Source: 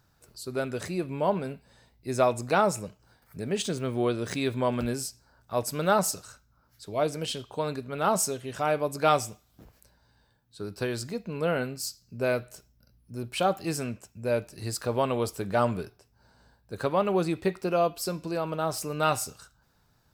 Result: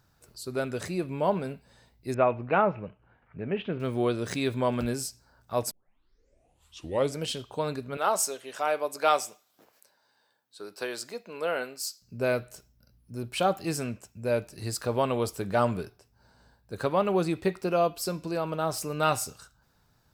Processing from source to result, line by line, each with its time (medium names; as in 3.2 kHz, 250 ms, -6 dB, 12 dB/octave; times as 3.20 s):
2.14–3.80 s: elliptic low-pass 2.8 kHz, stop band 70 dB
5.71 s: tape start 1.47 s
7.97–12.02 s: high-pass 450 Hz